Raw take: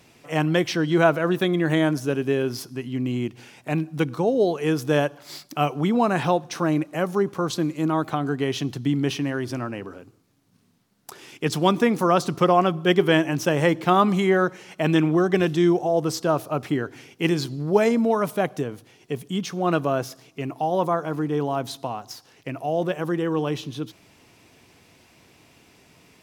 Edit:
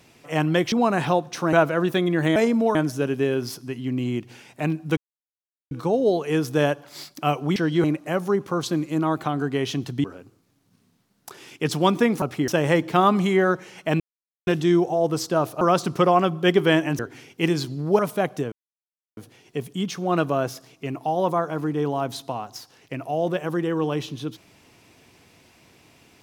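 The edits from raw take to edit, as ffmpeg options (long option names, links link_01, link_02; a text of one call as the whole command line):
ffmpeg -i in.wav -filter_complex "[0:a]asplit=17[link_01][link_02][link_03][link_04][link_05][link_06][link_07][link_08][link_09][link_10][link_11][link_12][link_13][link_14][link_15][link_16][link_17];[link_01]atrim=end=0.722[link_18];[link_02]atrim=start=5.898:end=6.712[link_19];[link_03]atrim=start=0.998:end=1.832[link_20];[link_04]atrim=start=17.798:end=18.192[link_21];[link_05]atrim=start=1.828:end=4.05,asetpts=PTS-STARTPTS,afade=type=out:start_time=2.218:duration=0.004:curve=hsin,apad=pad_dur=0.74[link_22];[link_06]atrim=start=4.05:end=5.902,asetpts=PTS-STARTPTS,afade=type=in:duration=0.004:curve=hsin[link_23];[link_07]atrim=start=0.718:end=1.002[link_24];[link_08]atrim=start=6.708:end=8.912[link_25];[link_09]atrim=start=9.848:end=12.032[link_26];[link_10]atrim=start=16.538:end=16.802[link_27];[link_11]atrim=start=13.408:end=14.93,asetpts=PTS-STARTPTS,afade=type=out:start_time=1.518:duration=0.004:curve=hsin[link_28];[link_12]atrim=start=14.93:end=15.4,asetpts=PTS-STARTPTS,volume=0[link_29];[link_13]atrim=start=15.4:end=16.542,asetpts=PTS-STARTPTS,afade=type=in:duration=0.004:curve=hsin[link_30];[link_14]atrim=start=12.028:end=13.412[link_31];[link_15]atrim=start=16.798:end=17.802[link_32];[link_16]atrim=start=18.188:end=18.72,asetpts=PTS-STARTPTS,afade=type=out:start_time=0.528:duration=0.004:curve=hsin,apad=pad_dur=0.65[link_33];[link_17]atrim=start=18.72,asetpts=PTS-STARTPTS,afade=type=in:duration=0.004:curve=hsin[link_34];[link_18][link_19]acrossfade=duration=0.004:curve1=hsin:curve2=hsin[link_35];[link_35][link_20]acrossfade=duration=0.004:curve1=hsin:curve2=hsin[link_36];[link_36][link_21]acrossfade=duration=0.004:curve1=hsin:curve2=hsin[link_37];[link_22][link_23]concat=n=2:v=0:a=1[link_38];[link_37][link_38]acrossfade=duration=0.004:curve1=hsin:curve2=hsin[link_39];[link_39][link_24]acrossfade=duration=0.004:curve1=hsin:curve2=hsin[link_40];[link_40][link_25]acrossfade=duration=0.004:curve1=hsin:curve2=hsin[link_41];[link_41][link_26]acrossfade=duration=0.004:curve1=hsin:curve2=hsin[link_42];[link_42][link_27]acrossfade=duration=0.004:curve1=hsin:curve2=hsin[link_43];[link_28][link_29][link_30]concat=n=3:v=0:a=1[link_44];[link_43][link_44]acrossfade=duration=0.004:curve1=hsin:curve2=hsin[link_45];[link_45][link_31]acrossfade=duration=0.004:curve1=hsin:curve2=hsin[link_46];[link_46][link_32]acrossfade=duration=0.004:curve1=hsin:curve2=hsin[link_47];[link_33][link_34]concat=n=2:v=0:a=1[link_48];[link_47][link_48]acrossfade=duration=0.004:curve1=hsin:curve2=hsin" out.wav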